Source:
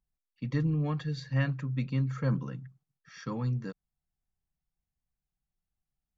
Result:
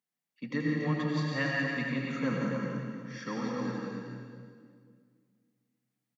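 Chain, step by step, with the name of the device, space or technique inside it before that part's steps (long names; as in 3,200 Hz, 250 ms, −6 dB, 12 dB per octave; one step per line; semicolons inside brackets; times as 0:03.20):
stadium PA (high-pass filter 200 Hz 24 dB per octave; parametric band 2,000 Hz +5.5 dB 0.44 octaves; loudspeakers that aren't time-aligned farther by 59 metres −9 dB, 97 metres −7 dB; convolution reverb RT60 2.0 s, pre-delay 80 ms, DRR −1.5 dB)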